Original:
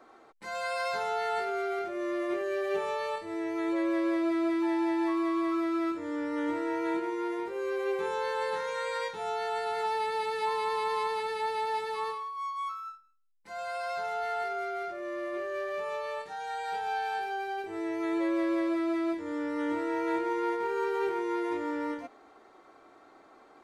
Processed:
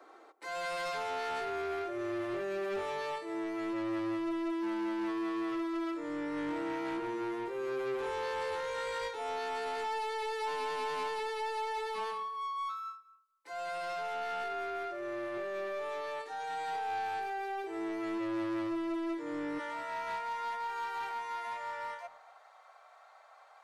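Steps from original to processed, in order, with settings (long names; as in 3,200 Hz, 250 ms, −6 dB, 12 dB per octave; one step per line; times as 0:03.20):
Butterworth high-pass 280 Hz 48 dB per octave, from 0:19.58 580 Hz
soft clipping −32 dBFS, distortion −11 dB
feedback echo with a low-pass in the loop 237 ms, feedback 22%, low-pass 950 Hz, level −15 dB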